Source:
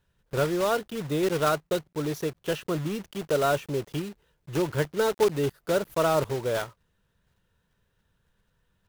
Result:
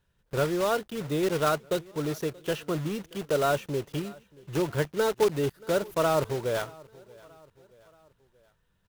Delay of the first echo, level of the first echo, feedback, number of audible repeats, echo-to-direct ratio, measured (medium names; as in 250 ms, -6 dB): 629 ms, -23.5 dB, 51%, 2, -22.5 dB